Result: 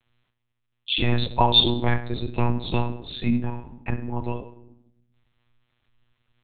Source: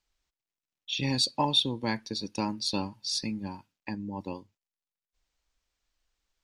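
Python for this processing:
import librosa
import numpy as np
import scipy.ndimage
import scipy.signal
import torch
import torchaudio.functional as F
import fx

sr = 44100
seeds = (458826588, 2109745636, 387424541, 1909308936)

y = fx.room_shoebox(x, sr, seeds[0], volume_m3=1900.0, walls='furnished', distance_m=1.4)
y = fx.lpc_monotone(y, sr, seeds[1], pitch_hz=120.0, order=10)
y = y * librosa.db_to_amplitude(8.0)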